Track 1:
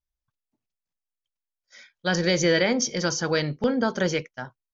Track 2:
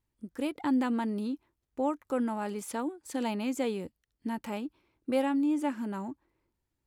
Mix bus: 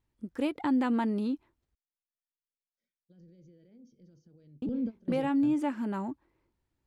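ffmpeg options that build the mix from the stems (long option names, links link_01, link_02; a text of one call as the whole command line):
ffmpeg -i stem1.wav -i stem2.wav -filter_complex "[0:a]tiltshelf=frequency=850:gain=4.5,alimiter=limit=-20dB:level=0:latency=1:release=57,firequalizer=gain_entry='entry(240,0);entry(910,-23);entry(2900,-13)':delay=0.05:min_phase=1,adelay=1050,volume=-3.5dB[link_01];[1:a]volume=2.5dB,asplit=3[link_02][link_03][link_04];[link_02]atrim=end=1.75,asetpts=PTS-STARTPTS,afade=type=out:start_time=1.746:duration=0.004:curve=hsin[link_05];[link_03]atrim=start=1.75:end=4.62,asetpts=PTS-STARTPTS,volume=0[link_06];[link_04]atrim=start=4.62,asetpts=PTS-STARTPTS,afade=type=in:duration=0.004:curve=hsin[link_07];[link_05][link_06][link_07]concat=n=3:v=0:a=1,asplit=2[link_08][link_09];[link_09]apad=whole_len=259633[link_10];[link_01][link_10]sidechaingate=range=-23dB:threshold=-60dB:ratio=16:detection=peak[link_11];[link_11][link_08]amix=inputs=2:normalize=0,highshelf=frequency=7500:gain=-12,alimiter=limit=-20.5dB:level=0:latency=1:release=203" out.wav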